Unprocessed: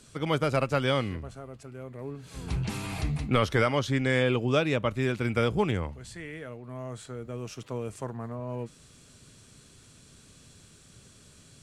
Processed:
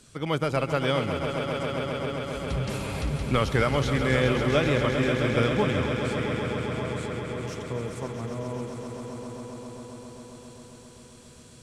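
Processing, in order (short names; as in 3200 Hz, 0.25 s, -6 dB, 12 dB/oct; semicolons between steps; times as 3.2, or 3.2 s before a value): swelling echo 0.133 s, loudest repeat 5, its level -10 dB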